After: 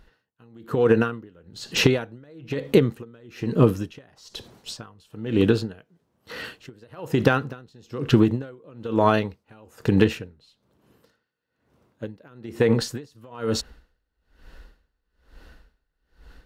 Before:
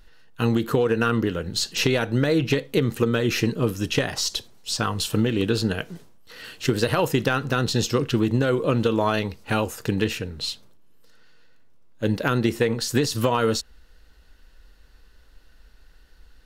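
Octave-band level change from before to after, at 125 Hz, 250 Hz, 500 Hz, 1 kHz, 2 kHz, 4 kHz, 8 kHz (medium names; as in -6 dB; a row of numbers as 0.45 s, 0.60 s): -1.5 dB, -0.5 dB, -0.5 dB, -2.5 dB, -3.5 dB, -5.5 dB, -8.0 dB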